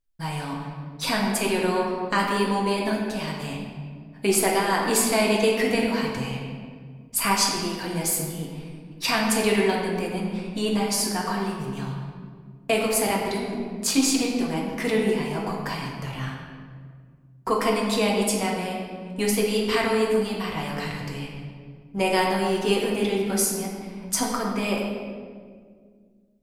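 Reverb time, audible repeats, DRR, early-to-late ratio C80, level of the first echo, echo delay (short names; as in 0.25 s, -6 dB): 1.9 s, none, -2.5 dB, 3.0 dB, none, none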